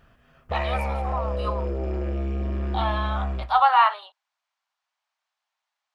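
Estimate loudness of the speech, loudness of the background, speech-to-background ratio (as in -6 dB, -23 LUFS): -24.5 LUFS, -29.0 LUFS, 4.5 dB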